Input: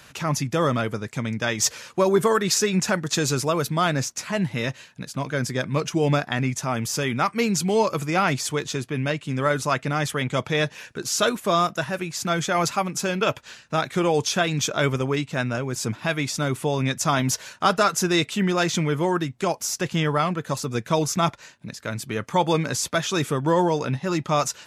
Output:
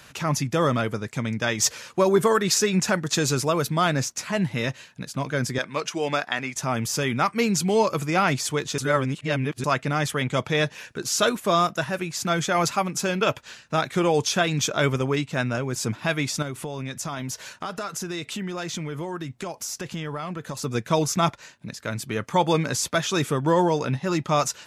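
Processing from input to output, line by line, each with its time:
0:05.58–0:06.56: meter weighting curve A
0:08.78–0:09.64: reverse
0:16.42–0:20.64: downward compressor, threshold −28 dBFS

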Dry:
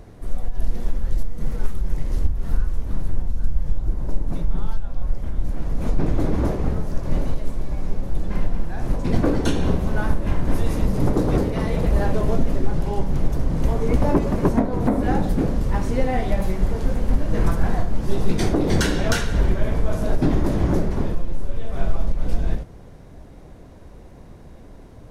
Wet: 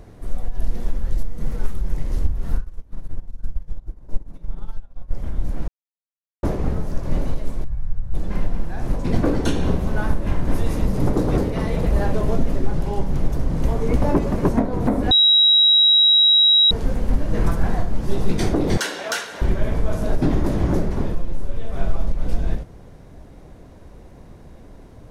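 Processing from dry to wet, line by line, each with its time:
0:02.58–0:05.11: expander for the loud parts 2.5 to 1, over −24 dBFS
0:05.68–0:06.43: silence
0:07.64–0:08.14: drawn EQ curve 120 Hz 0 dB, 290 Hz −24 dB, 1,600 Hz −9 dB, 2,400 Hz −17 dB
0:15.11–0:16.71: beep over 3,850 Hz −10.5 dBFS
0:18.77–0:19.42: high-pass filter 590 Hz

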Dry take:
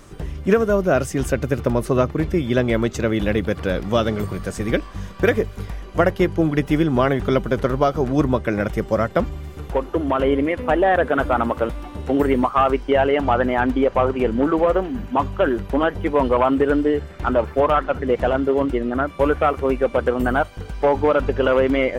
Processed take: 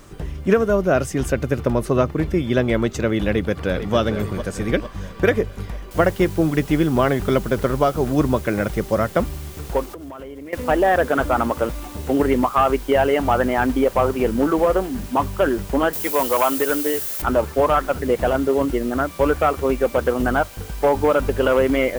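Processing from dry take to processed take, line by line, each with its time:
0:03.29–0:03.96: delay throw 450 ms, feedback 55%, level −10 dB
0:05.91: noise floor change −63 dB −43 dB
0:09.85–0:10.53: downward compressor 16 to 1, threshold −31 dBFS
0:15.93–0:17.22: RIAA equalisation recording

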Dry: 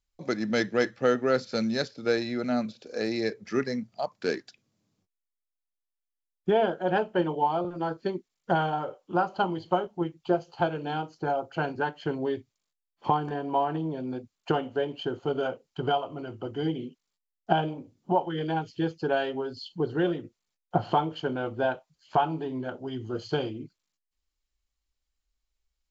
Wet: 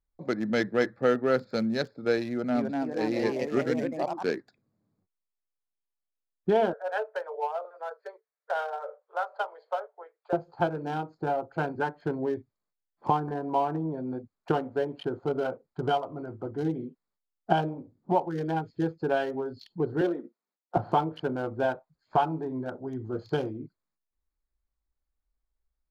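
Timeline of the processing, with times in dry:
0:02.28–0:04.30: delay with pitch and tempo change per echo 269 ms, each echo +2 semitones, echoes 3
0:06.73–0:10.33: Chebyshev high-pass with heavy ripple 430 Hz, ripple 6 dB
0:20.01–0:20.77: Butterworth high-pass 210 Hz
whole clip: adaptive Wiener filter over 15 samples; dynamic equaliser 6,600 Hz, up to −5 dB, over −51 dBFS, Q 0.93

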